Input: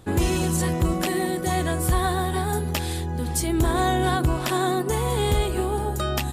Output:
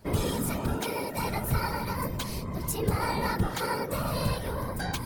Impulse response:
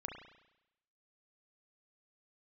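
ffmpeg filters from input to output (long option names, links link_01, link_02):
-af "asetrate=55125,aresample=44100,areverse,acompressor=mode=upward:threshold=-37dB:ratio=2.5,areverse,afftfilt=real='hypot(re,im)*cos(2*PI*random(0))':imag='hypot(re,im)*sin(2*PI*random(1))':win_size=512:overlap=0.75,adynamicequalizer=threshold=0.00631:dfrequency=430:dqfactor=2.3:tfrequency=430:tqfactor=2.3:attack=5:release=100:ratio=0.375:range=2.5:mode=cutabove:tftype=bell"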